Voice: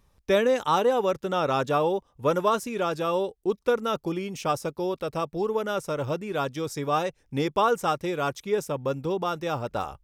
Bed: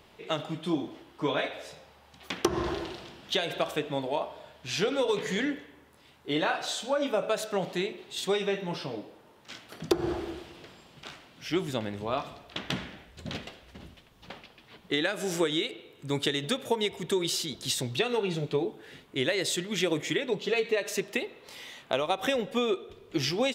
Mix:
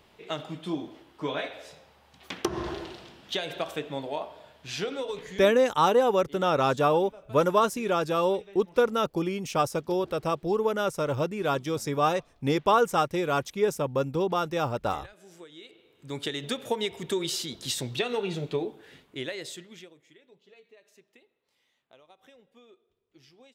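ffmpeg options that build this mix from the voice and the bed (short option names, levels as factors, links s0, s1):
-filter_complex "[0:a]adelay=5100,volume=1.12[s0];[1:a]volume=7.5,afade=t=out:st=4.68:d=0.95:silence=0.11885,afade=t=in:st=15.55:d=1.11:silence=0.1,afade=t=out:st=18.56:d=1.37:silence=0.0421697[s1];[s0][s1]amix=inputs=2:normalize=0"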